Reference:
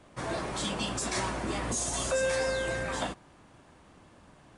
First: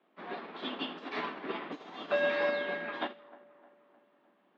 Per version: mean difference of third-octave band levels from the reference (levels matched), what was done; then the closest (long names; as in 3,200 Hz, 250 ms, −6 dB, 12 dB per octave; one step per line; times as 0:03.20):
10.0 dB: echo with a time of its own for lows and highs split 2,000 Hz, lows 306 ms, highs 82 ms, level −9.5 dB
single-sideband voice off tune +54 Hz 150–3,600 Hz
dynamic equaliser 600 Hz, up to −3 dB, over −39 dBFS, Q 1.5
expander for the loud parts 2.5 to 1, over −40 dBFS
level +3.5 dB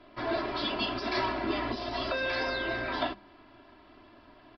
6.0 dB: parametric band 64 Hz −9.5 dB 1.1 octaves
mains-hum notches 50/100/150/200 Hz
comb filter 3 ms, depth 80%
downsampling to 11,025 Hz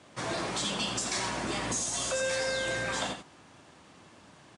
3.0 dB: high-shelf EQ 2,800 Hz +10 dB
downward compressor 2.5 to 1, threshold −29 dBFS, peak gain reduction 6.5 dB
band-pass filter 100–7,100 Hz
on a send: single-tap delay 86 ms −7.5 dB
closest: third